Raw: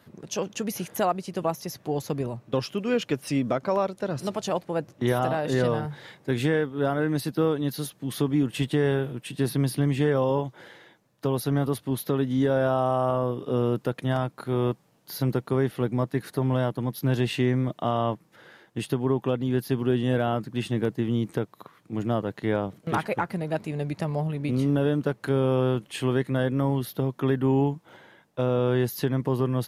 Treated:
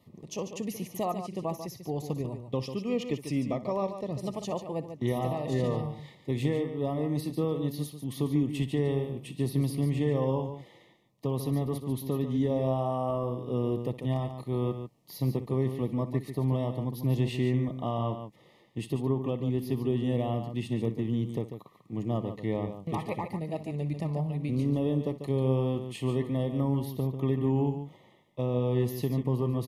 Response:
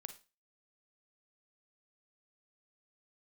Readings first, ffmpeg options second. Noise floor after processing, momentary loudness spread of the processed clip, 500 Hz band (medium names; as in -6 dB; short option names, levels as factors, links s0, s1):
-59 dBFS, 8 LU, -5.5 dB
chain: -af "asuperstop=centerf=1500:order=20:qfactor=2.9,lowshelf=f=280:g=6.5,aecho=1:1:61|144:0.168|0.355,volume=0.398"